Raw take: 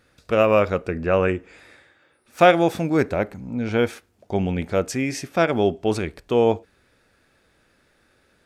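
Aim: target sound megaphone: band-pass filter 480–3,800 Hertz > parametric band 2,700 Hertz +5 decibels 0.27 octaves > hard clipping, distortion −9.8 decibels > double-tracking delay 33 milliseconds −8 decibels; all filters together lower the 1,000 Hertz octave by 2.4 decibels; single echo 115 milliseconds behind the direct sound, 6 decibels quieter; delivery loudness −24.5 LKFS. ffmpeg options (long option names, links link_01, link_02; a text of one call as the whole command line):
ffmpeg -i in.wav -filter_complex "[0:a]highpass=480,lowpass=3800,equalizer=frequency=1000:width_type=o:gain=-3,equalizer=frequency=2700:width_type=o:width=0.27:gain=5,aecho=1:1:115:0.501,asoftclip=type=hard:threshold=-16.5dB,asplit=2[link_01][link_02];[link_02]adelay=33,volume=-8dB[link_03];[link_01][link_03]amix=inputs=2:normalize=0,volume=1dB" out.wav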